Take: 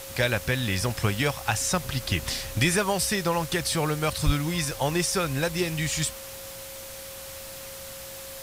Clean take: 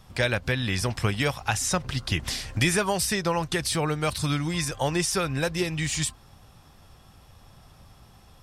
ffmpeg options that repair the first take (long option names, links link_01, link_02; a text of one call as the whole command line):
ffmpeg -i in.wav -filter_complex "[0:a]adeclick=threshold=4,bandreject=frequency=540:width=30,asplit=3[link_01][link_02][link_03];[link_01]afade=type=out:start_time=4.25:duration=0.02[link_04];[link_02]highpass=frequency=140:width=0.5412,highpass=frequency=140:width=1.3066,afade=type=in:start_time=4.25:duration=0.02,afade=type=out:start_time=4.37:duration=0.02[link_05];[link_03]afade=type=in:start_time=4.37:duration=0.02[link_06];[link_04][link_05][link_06]amix=inputs=3:normalize=0,afftdn=noise_reduction=12:noise_floor=-40" out.wav